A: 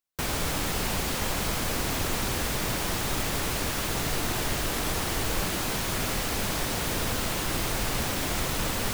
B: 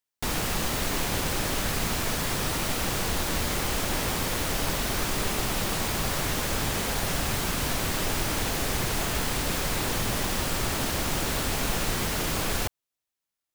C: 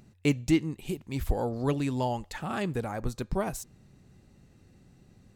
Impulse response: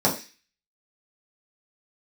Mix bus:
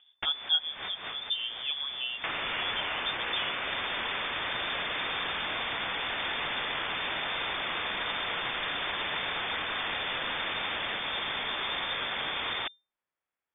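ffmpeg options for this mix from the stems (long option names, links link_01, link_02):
-filter_complex "[0:a]adelay=2050,volume=-2dB[link_01];[1:a]lowshelf=frequency=420:width_type=q:width=1.5:gain=7,volume=-3dB[link_02];[2:a]aecho=1:1:6:0.54,volume=-7dB,asplit=2[link_03][link_04];[link_04]apad=whole_len=597114[link_05];[link_02][link_05]sidechaincompress=threshold=-52dB:ratio=16:attack=16:release=153[link_06];[link_01][link_06]amix=inputs=2:normalize=0,tiltshelf=frequency=670:gain=-9.5,acompressor=threshold=-25dB:ratio=5,volume=0dB[link_07];[link_03][link_07]amix=inputs=2:normalize=0,lowpass=frequency=3100:width_type=q:width=0.5098,lowpass=frequency=3100:width_type=q:width=0.6013,lowpass=frequency=3100:width_type=q:width=0.9,lowpass=frequency=3100:width_type=q:width=2.563,afreqshift=-3600"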